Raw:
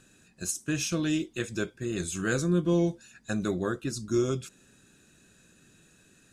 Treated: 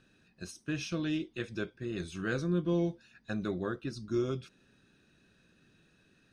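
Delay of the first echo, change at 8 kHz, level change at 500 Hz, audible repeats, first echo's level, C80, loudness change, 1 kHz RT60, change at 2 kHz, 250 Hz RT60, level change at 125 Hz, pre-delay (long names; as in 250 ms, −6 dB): no echo audible, −16.5 dB, −5.0 dB, no echo audible, no echo audible, no reverb audible, −5.0 dB, no reverb audible, −5.0 dB, no reverb audible, −5.0 dB, no reverb audible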